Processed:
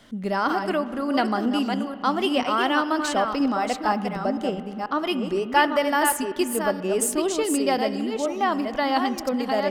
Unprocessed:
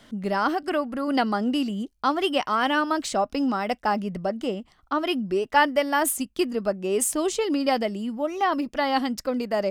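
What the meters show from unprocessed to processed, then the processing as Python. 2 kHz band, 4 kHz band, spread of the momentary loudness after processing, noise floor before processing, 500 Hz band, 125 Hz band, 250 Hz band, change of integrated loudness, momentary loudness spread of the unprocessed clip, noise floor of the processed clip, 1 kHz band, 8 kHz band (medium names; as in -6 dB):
+1.0 dB, +1.0 dB, 6 LU, -61 dBFS, +1.0 dB, +1.0 dB, +1.5 dB, +1.0 dB, 6 LU, -34 dBFS, +1.5 dB, +1.0 dB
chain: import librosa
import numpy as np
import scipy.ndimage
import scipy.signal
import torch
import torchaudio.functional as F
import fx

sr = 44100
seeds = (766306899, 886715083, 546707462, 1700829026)

y = fx.reverse_delay(x, sr, ms=486, wet_db=-5.5)
y = fx.rev_spring(y, sr, rt60_s=2.7, pass_ms=(32, 41, 47), chirp_ms=55, drr_db=13.5)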